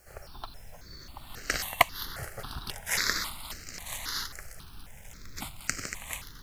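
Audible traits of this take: a quantiser's noise floor 10-bit, dither none; notches that jump at a steady rate 3.7 Hz 990–3500 Hz

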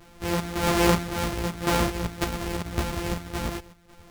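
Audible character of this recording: a buzz of ramps at a fixed pitch in blocks of 256 samples; chopped level 1.8 Hz, depth 65%, duty 70%; a shimmering, thickened sound

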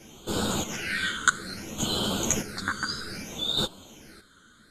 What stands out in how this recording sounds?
phasing stages 8, 0.62 Hz, lowest notch 730–1900 Hz; chopped level 0.56 Hz, depth 65%, duty 35%; a shimmering, thickened sound

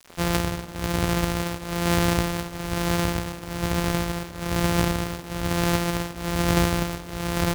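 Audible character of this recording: a buzz of ramps at a fixed pitch in blocks of 256 samples; tremolo triangle 1.1 Hz, depth 90%; a quantiser's noise floor 8-bit, dither none

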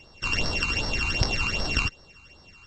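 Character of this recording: a buzz of ramps at a fixed pitch in blocks of 16 samples; phasing stages 12, 2.6 Hz, lowest notch 560–2600 Hz; µ-law

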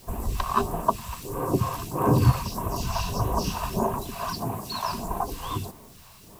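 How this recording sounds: phasing stages 2, 1.6 Hz, lowest notch 300–4500 Hz; a quantiser's noise floor 10-bit, dither triangular

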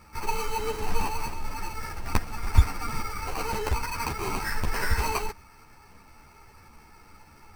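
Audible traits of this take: aliases and images of a low sample rate 3500 Hz, jitter 0%; a shimmering, thickened sound

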